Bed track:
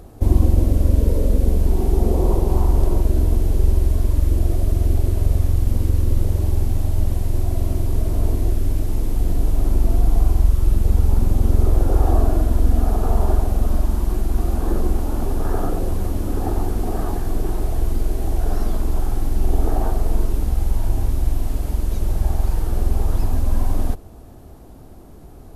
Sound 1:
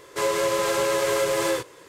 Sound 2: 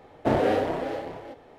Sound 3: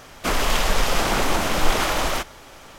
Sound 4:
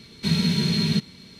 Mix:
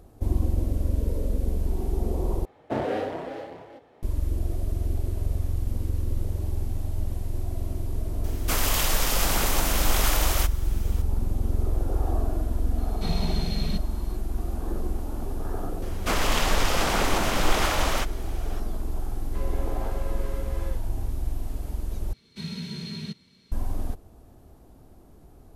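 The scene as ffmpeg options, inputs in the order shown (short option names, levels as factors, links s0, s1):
-filter_complex "[3:a]asplit=2[s0][s1];[4:a]asplit=2[s2][s3];[0:a]volume=0.335[s4];[2:a]highpass=50[s5];[s0]aemphasis=mode=production:type=50fm[s6];[1:a]lowpass=f=1700:p=1[s7];[s4]asplit=3[s8][s9][s10];[s8]atrim=end=2.454[s11];[s5]atrim=end=1.58,asetpts=PTS-STARTPTS,volume=0.562[s12];[s9]atrim=start=4.026:end=22.134[s13];[s3]atrim=end=1.39,asetpts=PTS-STARTPTS,volume=0.224[s14];[s10]atrim=start=23.516[s15];[s6]atrim=end=2.78,asetpts=PTS-STARTPTS,volume=0.473,afade=t=in:d=0.004:c=hsin,afade=t=out:st=2.776:d=0.004:c=hsin,adelay=8240[s16];[s2]atrim=end=1.39,asetpts=PTS-STARTPTS,volume=0.316,afade=t=in:d=0.004:c=hsin,afade=t=out:st=1.386:d=0.004:c=hsin,adelay=12780[s17];[s1]atrim=end=2.78,asetpts=PTS-STARTPTS,volume=0.708,afade=t=in:d=0.004:c=hsin,afade=t=out:st=2.776:d=0.004:c=hsin,adelay=15820[s18];[s7]atrim=end=1.88,asetpts=PTS-STARTPTS,volume=0.158,afade=t=in:d=0.004:c=hsin,afade=t=out:st=1.876:d=0.004:c=hsin,adelay=19170[s19];[s11][s12]acrossfade=d=0.004:c1=hsin:c2=hsin[s20];[s20][s13]acrossfade=d=0.004:c1=hsin:c2=hsin[s21];[s21][s14]acrossfade=d=0.004:c1=hsin:c2=hsin[s22];[s22][s15]acrossfade=d=0.004:c1=hsin:c2=hsin[s23];[s23][s16][s17][s18][s19]amix=inputs=5:normalize=0"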